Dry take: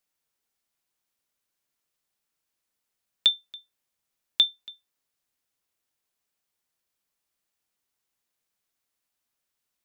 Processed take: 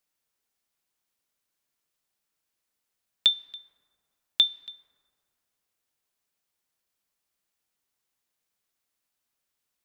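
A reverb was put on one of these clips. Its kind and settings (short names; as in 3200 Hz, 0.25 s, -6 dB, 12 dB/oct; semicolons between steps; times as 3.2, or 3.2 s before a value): plate-style reverb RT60 2.4 s, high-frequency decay 0.4×, DRR 18 dB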